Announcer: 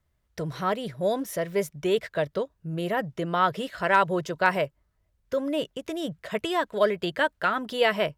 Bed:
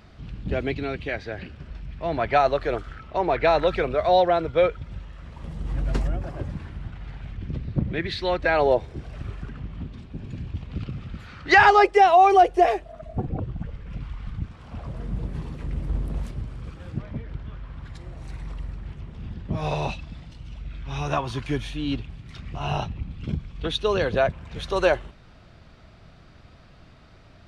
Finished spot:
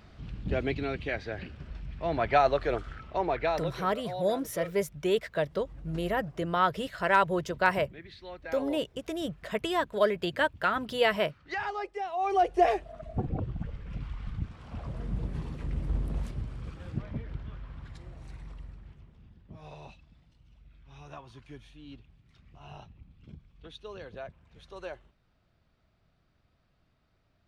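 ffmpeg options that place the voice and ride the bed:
-filter_complex "[0:a]adelay=3200,volume=0.75[s0];[1:a]volume=4.22,afade=t=out:st=3.02:d=0.8:silence=0.158489,afade=t=in:st=12.14:d=0.59:silence=0.158489,afade=t=out:st=17.25:d=2.05:silence=0.141254[s1];[s0][s1]amix=inputs=2:normalize=0"

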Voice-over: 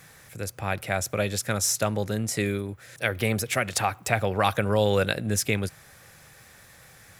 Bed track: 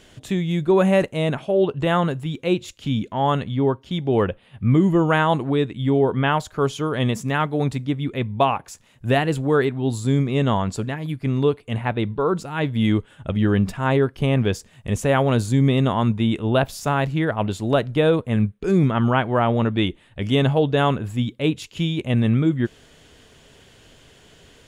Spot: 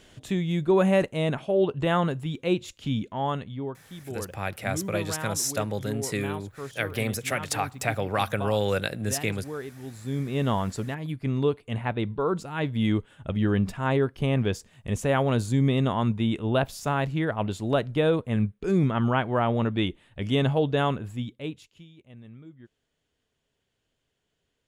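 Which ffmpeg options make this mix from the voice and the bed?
-filter_complex "[0:a]adelay=3750,volume=0.708[s0];[1:a]volume=2.51,afade=t=out:st=2.83:d=0.96:silence=0.223872,afade=t=in:st=9.94:d=0.55:silence=0.251189,afade=t=out:st=20.75:d=1.1:silence=0.0707946[s1];[s0][s1]amix=inputs=2:normalize=0"

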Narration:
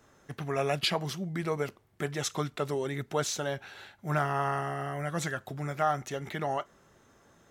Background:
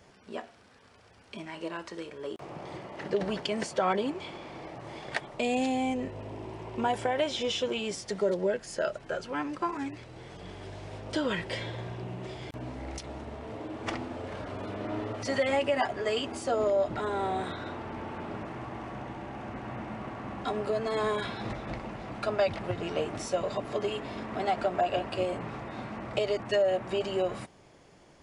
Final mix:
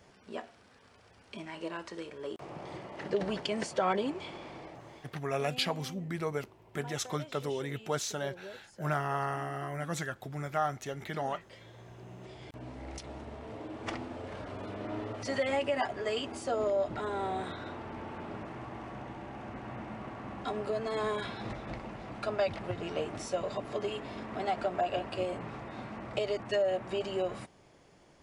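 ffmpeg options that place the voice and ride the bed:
-filter_complex "[0:a]adelay=4750,volume=0.708[s0];[1:a]volume=4.47,afade=t=out:st=4.47:d=0.69:silence=0.149624,afade=t=in:st=11.59:d=1.46:silence=0.177828[s1];[s0][s1]amix=inputs=2:normalize=0"

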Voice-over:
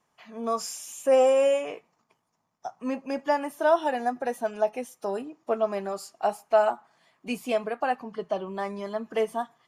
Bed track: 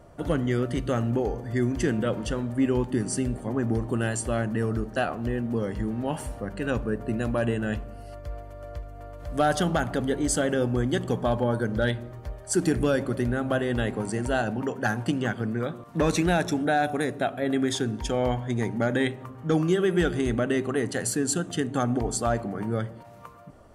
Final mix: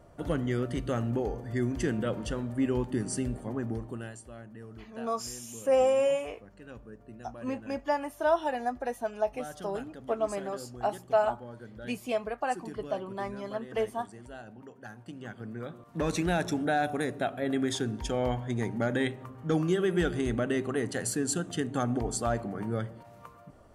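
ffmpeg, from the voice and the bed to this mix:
-filter_complex "[0:a]adelay=4600,volume=0.631[s0];[1:a]volume=3.55,afade=t=out:st=3.35:d=0.88:silence=0.177828,afade=t=in:st=15.05:d=1.45:silence=0.16788[s1];[s0][s1]amix=inputs=2:normalize=0"

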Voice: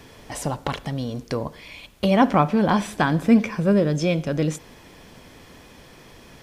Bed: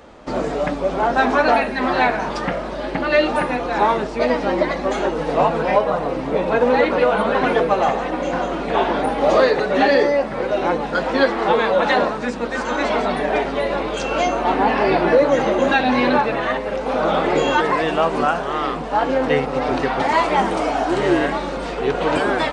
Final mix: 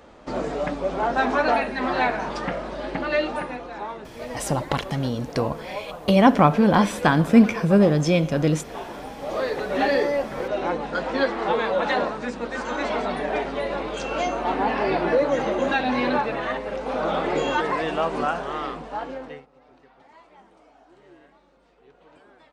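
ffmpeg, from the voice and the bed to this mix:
-filter_complex "[0:a]adelay=4050,volume=1.26[s0];[1:a]volume=1.88,afade=t=out:st=2.94:d=0.89:silence=0.266073,afade=t=in:st=9.23:d=0.58:silence=0.298538,afade=t=out:st=18.46:d=1.01:silence=0.0375837[s1];[s0][s1]amix=inputs=2:normalize=0"

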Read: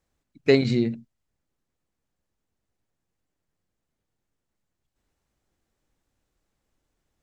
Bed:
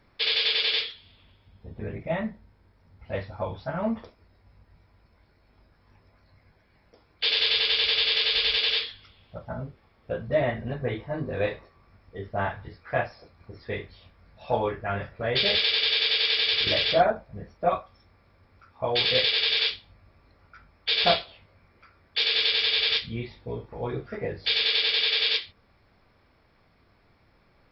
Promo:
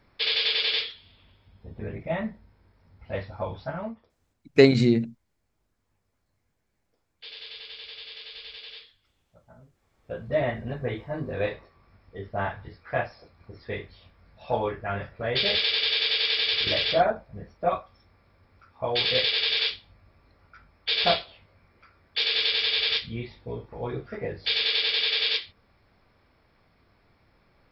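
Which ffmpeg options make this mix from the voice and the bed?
-filter_complex "[0:a]adelay=4100,volume=1.33[s0];[1:a]volume=7.08,afade=t=out:st=3.68:d=0.29:silence=0.125893,afade=t=in:st=9.72:d=0.66:silence=0.133352[s1];[s0][s1]amix=inputs=2:normalize=0"

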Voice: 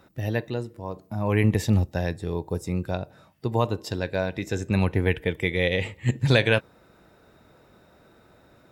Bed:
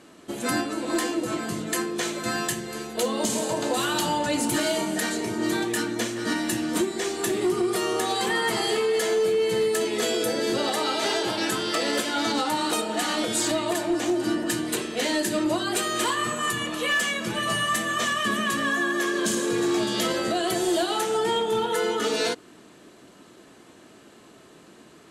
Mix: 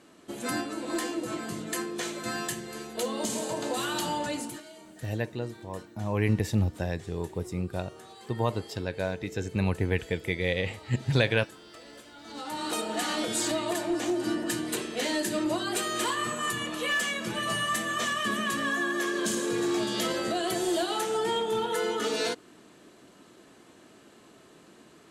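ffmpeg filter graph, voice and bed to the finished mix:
-filter_complex "[0:a]adelay=4850,volume=0.596[s0];[1:a]volume=5.01,afade=t=out:st=4.24:d=0.38:silence=0.125893,afade=t=in:st=12.25:d=0.61:silence=0.105925[s1];[s0][s1]amix=inputs=2:normalize=0"

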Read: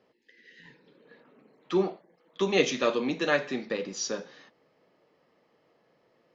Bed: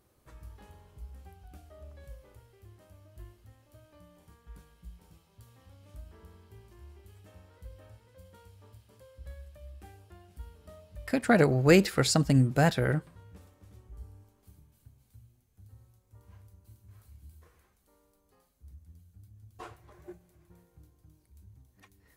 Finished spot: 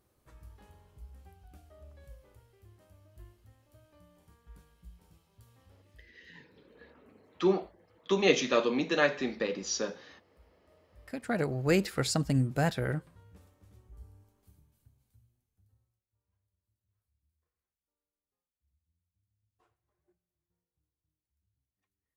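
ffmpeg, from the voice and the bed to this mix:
-filter_complex "[0:a]adelay=5700,volume=0.944[s0];[1:a]volume=3.16,afade=t=out:st=5.61:d=0.51:silence=0.188365,afade=t=in:st=10.66:d=1.36:silence=0.199526,afade=t=out:st=14.38:d=1.69:silence=0.0630957[s1];[s0][s1]amix=inputs=2:normalize=0"

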